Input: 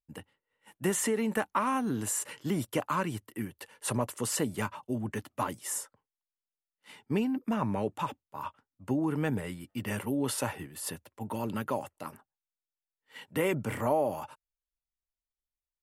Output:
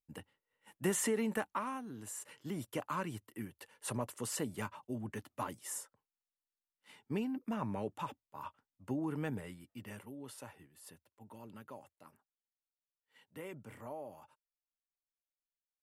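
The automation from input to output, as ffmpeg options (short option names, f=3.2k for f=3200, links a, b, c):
-af "volume=4.5dB,afade=t=out:st=1.19:d=0.69:silence=0.251189,afade=t=in:st=1.88:d=1.06:silence=0.375837,afade=t=out:st=9.19:d=0.95:silence=0.298538"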